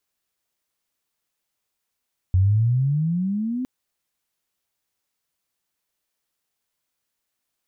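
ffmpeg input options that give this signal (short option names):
-f lavfi -i "aevalsrc='pow(10,(-13.5-10*t/1.31)/20)*sin(2*PI*89.7*1.31/(18.5*log(2)/12)*(exp(18.5*log(2)/12*t/1.31)-1))':d=1.31:s=44100"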